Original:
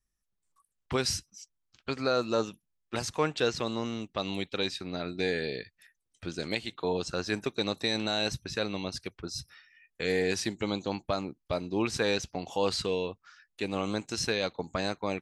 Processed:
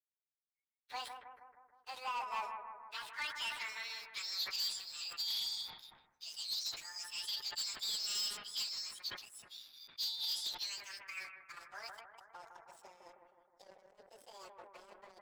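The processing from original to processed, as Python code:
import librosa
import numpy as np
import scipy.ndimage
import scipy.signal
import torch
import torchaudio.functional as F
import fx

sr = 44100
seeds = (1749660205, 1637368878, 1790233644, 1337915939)

y = fx.pitch_bins(x, sr, semitones=11.5)
y = fx.filter_sweep_bandpass(y, sr, from_hz=4000.0, to_hz=520.0, start_s=10.5, end_s=12.89, q=3.6)
y = fx.over_compress(y, sr, threshold_db=-45.0, ratio=-0.5)
y = fx.filter_sweep_bandpass(y, sr, from_hz=970.0, to_hz=5400.0, start_s=2.53, end_s=4.81, q=1.8)
y = fx.leveller(y, sr, passes=3)
y = fx.echo_bbd(y, sr, ms=157, stages=2048, feedback_pct=59, wet_db=-6.0)
y = fx.sustainer(y, sr, db_per_s=89.0)
y = y * librosa.db_to_amplitude(2.5)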